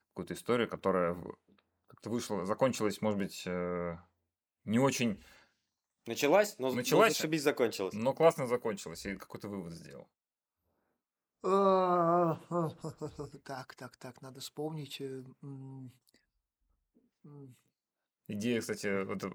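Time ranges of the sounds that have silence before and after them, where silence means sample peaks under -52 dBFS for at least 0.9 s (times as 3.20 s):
11.44–16.16 s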